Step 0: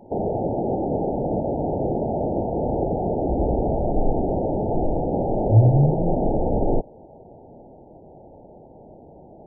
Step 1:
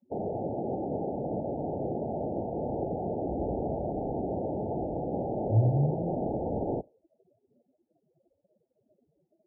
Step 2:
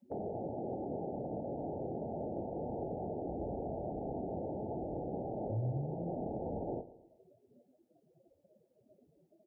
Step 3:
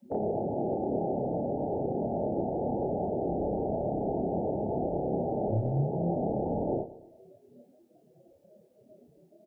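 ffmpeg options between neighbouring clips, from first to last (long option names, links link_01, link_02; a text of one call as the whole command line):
ffmpeg -i in.wav -af "afftdn=noise_reduction=34:noise_floor=-31,highpass=78,volume=-8.5dB" out.wav
ffmpeg -i in.wav -filter_complex "[0:a]acompressor=threshold=-49dB:ratio=2,asplit=2[link_01][link_02];[link_02]adelay=24,volume=-10.5dB[link_03];[link_01][link_03]amix=inputs=2:normalize=0,aecho=1:1:113|226|339|452:0.141|0.0664|0.0312|0.0147,volume=3dB" out.wav
ffmpeg -i in.wav -filter_complex "[0:a]acrossover=split=100[link_01][link_02];[link_01]aeval=exprs='clip(val(0),-1,0.00188)':channel_layout=same[link_03];[link_02]asplit=2[link_04][link_05];[link_05]adelay=29,volume=-2.5dB[link_06];[link_04][link_06]amix=inputs=2:normalize=0[link_07];[link_03][link_07]amix=inputs=2:normalize=0,volume=7dB" out.wav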